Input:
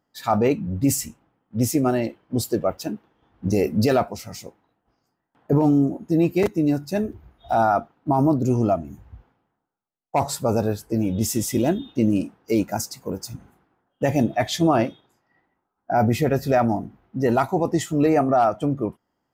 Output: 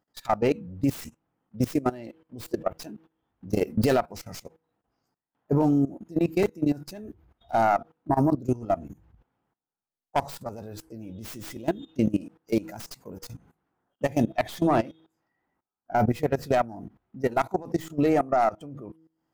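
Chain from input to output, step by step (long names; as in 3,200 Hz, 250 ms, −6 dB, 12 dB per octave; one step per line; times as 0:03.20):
stylus tracing distortion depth 0.26 ms
hum removal 160.9 Hz, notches 3
output level in coarse steps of 19 dB
level −1.5 dB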